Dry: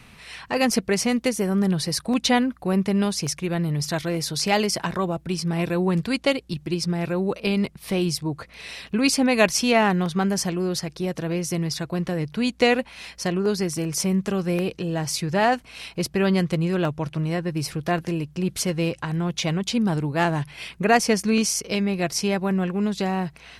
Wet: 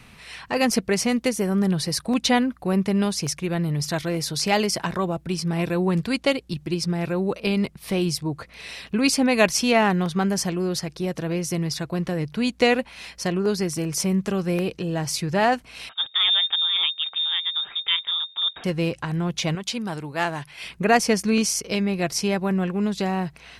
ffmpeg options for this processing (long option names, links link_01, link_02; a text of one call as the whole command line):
ffmpeg -i in.wav -filter_complex "[0:a]asettb=1/sr,asplit=3[link_01][link_02][link_03];[link_01]atrim=end=15.894[link_04];[link_02]atrim=start=15.89:end=18.64,asetpts=PTS-STARTPTS,afade=type=in:duration=0.004:curve=qsin,afade=type=out:start_time=2.746:duration=0.004:curve=qsin,lowpass=frequency=3200:width_type=q:width=0.5098,lowpass=frequency=3200:width_type=q:width=0.6013,lowpass=frequency=3200:width_type=q:width=0.9,lowpass=frequency=3200:width_type=q:width=2.563,afreqshift=-3800[link_05];[link_03]atrim=start=18.636[link_06];[link_04][link_05]acrossfade=duration=0.004:curve1=hsin:curve2=qsin[link_07];[link_07][link_06]acrossfade=duration=0.004:curve1=qsin:curve2=hsin,asettb=1/sr,asplit=3[link_08][link_09][link_10];[link_08]atrim=end=19.554[link_11];[link_09]atrim=start=19.55:end=20.64,asetpts=PTS-STARTPTS,afade=type=in:duration=0.004:curve=qsin,afade=type=out:start_time=1.086:duration=0.004:curve=qsin,lowshelf=frequency=430:gain=-10.5[link_12];[link_10]atrim=start=20.636[link_13];[link_11][link_12]acrossfade=duration=0.004:curve1=hsin:curve2=qsin[link_14];[link_14][link_13]acrossfade=duration=0.004:curve1=qsin:curve2=hsin" out.wav